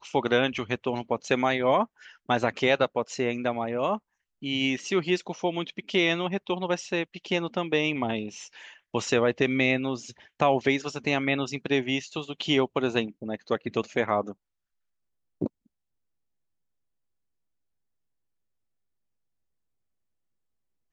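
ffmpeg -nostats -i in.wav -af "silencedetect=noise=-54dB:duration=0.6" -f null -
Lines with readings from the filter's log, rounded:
silence_start: 14.34
silence_end: 15.41 | silence_duration: 1.07
silence_start: 15.66
silence_end: 20.92 | silence_duration: 5.26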